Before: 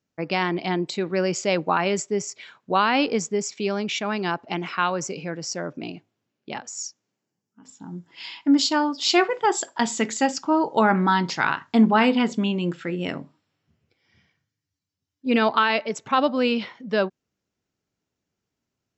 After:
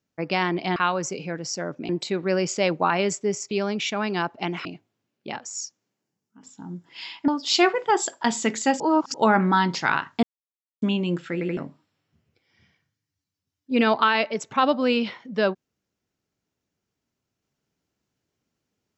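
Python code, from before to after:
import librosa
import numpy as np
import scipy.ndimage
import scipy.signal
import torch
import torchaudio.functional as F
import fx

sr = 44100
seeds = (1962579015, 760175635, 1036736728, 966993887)

y = fx.edit(x, sr, fx.cut(start_s=2.38, length_s=1.22),
    fx.move(start_s=4.74, length_s=1.13, to_s=0.76),
    fx.cut(start_s=8.5, length_s=0.33),
    fx.reverse_span(start_s=10.35, length_s=0.34),
    fx.silence(start_s=11.78, length_s=0.59),
    fx.stutter_over(start_s=12.88, slice_s=0.08, count=3), tone=tone)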